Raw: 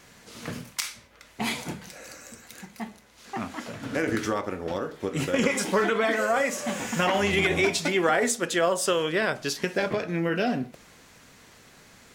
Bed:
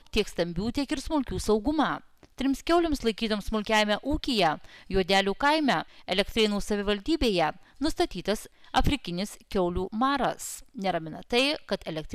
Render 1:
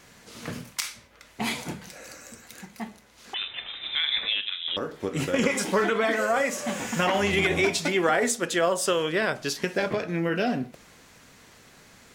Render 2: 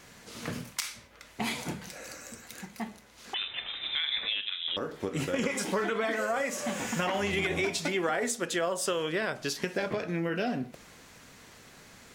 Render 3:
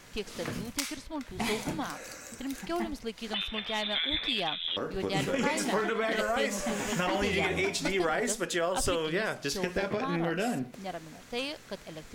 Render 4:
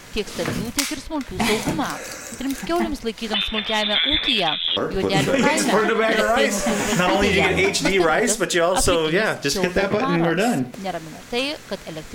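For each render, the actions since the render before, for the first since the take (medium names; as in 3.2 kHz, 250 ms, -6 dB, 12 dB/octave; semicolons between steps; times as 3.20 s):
3.34–4.77 s: frequency inversion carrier 3.8 kHz
compression 2:1, threshold -31 dBFS, peak gain reduction 7.5 dB
add bed -10.5 dB
trim +11 dB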